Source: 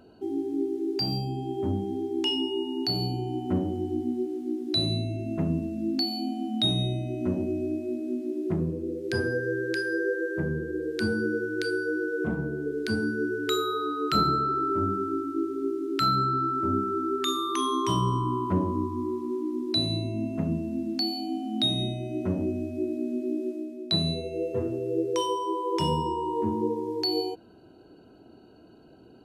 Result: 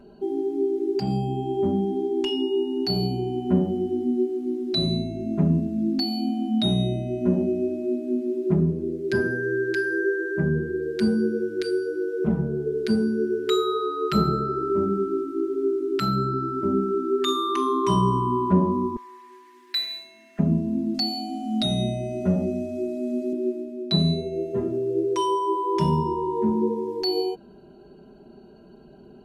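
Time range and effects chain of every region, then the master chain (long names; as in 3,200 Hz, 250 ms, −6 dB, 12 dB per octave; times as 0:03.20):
0:18.96–0:20.39: running median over 5 samples + high-pass with resonance 1,800 Hz, resonance Q 5.4
0:20.94–0:23.33: parametric band 7,400 Hz +7 dB 1.6 octaves + comb filter 1.5 ms, depth 45%
whole clip: spectral tilt −1.5 dB per octave; comb filter 5 ms, depth 91%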